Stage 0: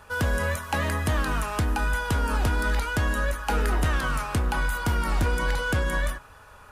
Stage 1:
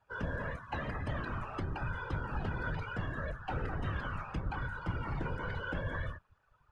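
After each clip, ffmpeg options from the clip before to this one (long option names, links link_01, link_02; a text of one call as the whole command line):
ffmpeg -i in.wav -af "lowpass=5100,afftfilt=real='hypot(re,im)*cos(2*PI*random(0))':imag='hypot(re,im)*sin(2*PI*random(1))':win_size=512:overlap=0.75,afftdn=noise_reduction=14:noise_floor=-43,volume=-5.5dB" out.wav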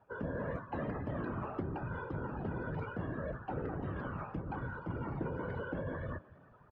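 ffmpeg -i in.wav -filter_complex "[0:a]areverse,acompressor=threshold=-44dB:ratio=12,areverse,bandpass=frequency=320:width_type=q:width=0.76:csg=0,asplit=4[link_01][link_02][link_03][link_04];[link_02]adelay=321,afreqshift=45,volume=-22.5dB[link_05];[link_03]adelay=642,afreqshift=90,volume=-30.5dB[link_06];[link_04]adelay=963,afreqshift=135,volume=-38.4dB[link_07];[link_01][link_05][link_06][link_07]amix=inputs=4:normalize=0,volume=15.5dB" out.wav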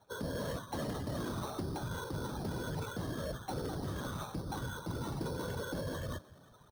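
ffmpeg -i in.wav -filter_complex "[0:a]asplit=2[link_01][link_02];[link_02]aeval=exprs='0.0211*(abs(mod(val(0)/0.0211+3,4)-2)-1)':channel_layout=same,volume=-7dB[link_03];[link_01][link_03]amix=inputs=2:normalize=0,acrusher=samples=9:mix=1:aa=0.000001,volume=-2.5dB" out.wav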